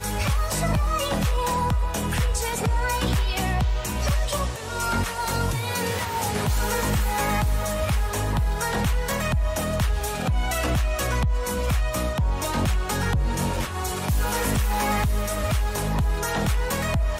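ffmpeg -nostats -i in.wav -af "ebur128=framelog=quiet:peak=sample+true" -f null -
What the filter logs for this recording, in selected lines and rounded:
Integrated loudness:
  I:         -24.9 LUFS
  Threshold: -34.9 LUFS
Loudness range:
  LRA:         0.9 LU
  Threshold: -45.0 LUFS
  LRA low:   -25.4 LUFS
  LRA high:  -24.5 LUFS
Sample peak:
  Peak:      -13.4 dBFS
True peak:
  Peak:      -13.4 dBFS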